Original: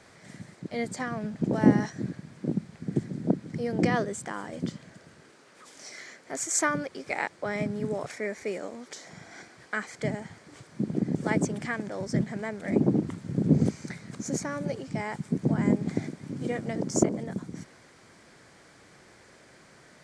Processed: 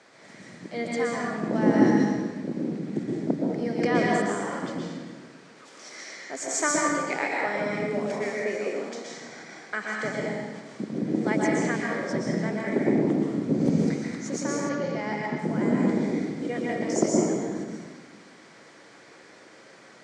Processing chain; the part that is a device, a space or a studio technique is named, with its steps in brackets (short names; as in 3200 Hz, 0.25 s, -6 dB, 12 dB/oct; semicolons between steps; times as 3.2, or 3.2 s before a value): supermarket ceiling speaker (BPF 240–6800 Hz; reverb RT60 1.4 s, pre-delay 0.114 s, DRR -3.5 dB); 14.69–15.39 LPF 6200 Hz 24 dB/oct